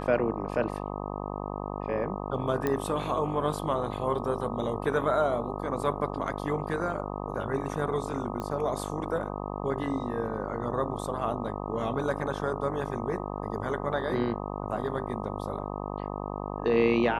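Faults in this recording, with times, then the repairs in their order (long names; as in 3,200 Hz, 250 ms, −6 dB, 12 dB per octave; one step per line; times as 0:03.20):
mains buzz 50 Hz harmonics 25 −35 dBFS
0:02.67: click −15 dBFS
0:08.40: click −22 dBFS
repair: click removal
hum removal 50 Hz, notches 25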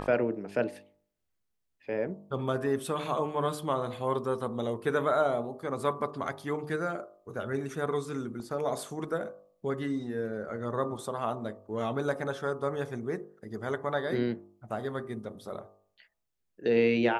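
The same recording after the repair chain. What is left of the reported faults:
none of them is left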